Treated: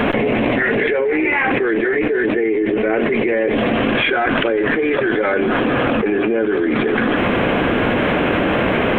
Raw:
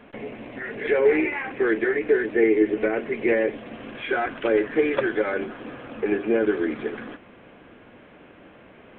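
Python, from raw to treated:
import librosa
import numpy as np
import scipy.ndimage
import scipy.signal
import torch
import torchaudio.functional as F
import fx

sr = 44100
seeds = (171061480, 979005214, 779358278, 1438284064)

y = fx.env_flatten(x, sr, amount_pct=100)
y = F.gain(torch.from_numpy(y), -3.0).numpy()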